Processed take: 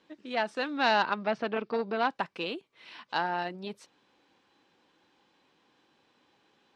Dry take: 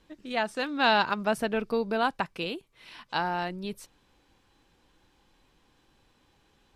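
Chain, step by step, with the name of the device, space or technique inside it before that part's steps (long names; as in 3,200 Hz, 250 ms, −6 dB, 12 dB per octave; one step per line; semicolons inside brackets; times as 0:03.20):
0:00.91–0:02.10: low-pass filter 5,100 Hz 24 dB per octave
public-address speaker with an overloaded transformer (saturating transformer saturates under 1,300 Hz; band-pass filter 220–5,300 Hz)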